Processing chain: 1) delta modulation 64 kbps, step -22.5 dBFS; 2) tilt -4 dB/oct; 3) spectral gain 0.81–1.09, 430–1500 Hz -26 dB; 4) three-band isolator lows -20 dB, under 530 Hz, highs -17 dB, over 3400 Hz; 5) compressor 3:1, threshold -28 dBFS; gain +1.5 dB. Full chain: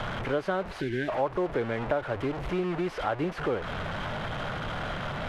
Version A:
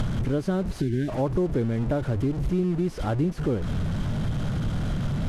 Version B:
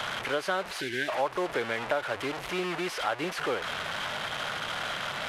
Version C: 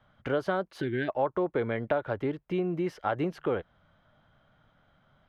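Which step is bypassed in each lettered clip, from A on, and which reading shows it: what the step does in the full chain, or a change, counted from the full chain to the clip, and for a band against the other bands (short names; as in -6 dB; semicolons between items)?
4, 125 Hz band +14.0 dB; 2, 125 Hz band -11.0 dB; 1, 4 kHz band -6.0 dB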